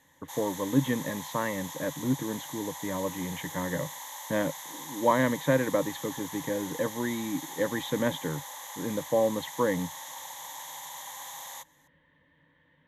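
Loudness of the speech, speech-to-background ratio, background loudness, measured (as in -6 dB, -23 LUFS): -31.0 LUFS, 9.0 dB, -40.0 LUFS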